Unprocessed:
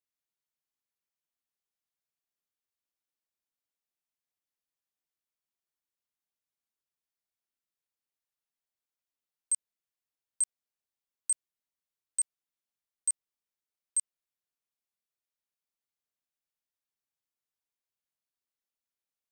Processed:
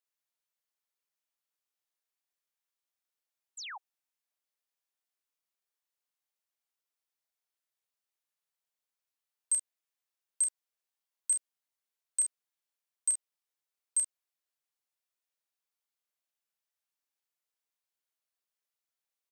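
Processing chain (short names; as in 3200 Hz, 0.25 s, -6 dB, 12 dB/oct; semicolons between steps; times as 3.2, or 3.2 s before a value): early reflections 32 ms -6.5 dB, 47 ms -7.5 dB; painted sound fall, 3.57–3.78, 710–8400 Hz -42 dBFS; HPF 460 Hz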